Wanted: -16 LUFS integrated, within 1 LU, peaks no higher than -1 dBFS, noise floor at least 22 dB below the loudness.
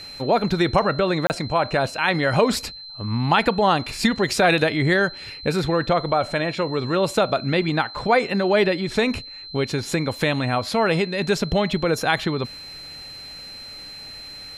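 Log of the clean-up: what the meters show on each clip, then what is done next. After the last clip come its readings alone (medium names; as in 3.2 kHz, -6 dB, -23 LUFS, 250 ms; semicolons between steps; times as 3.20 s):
dropouts 1; longest dropout 29 ms; steady tone 4.1 kHz; tone level -36 dBFS; loudness -21.5 LUFS; peak level -5.0 dBFS; loudness target -16.0 LUFS
-> interpolate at 1.27 s, 29 ms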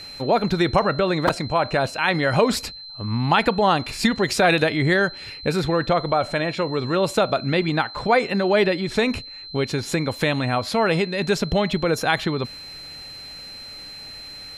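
dropouts 0; steady tone 4.1 kHz; tone level -36 dBFS
-> band-stop 4.1 kHz, Q 30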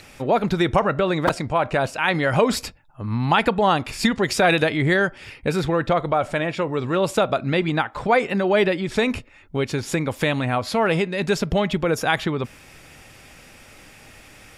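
steady tone not found; loudness -21.5 LUFS; peak level -5.0 dBFS; loudness target -16.0 LUFS
-> trim +5.5 dB; peak limiter -1 dBFS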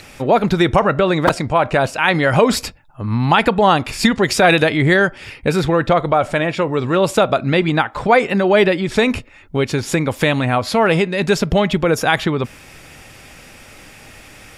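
loudness -16.0 LUFS; peak level -1.0 dBFS; noise floor -42 dBFS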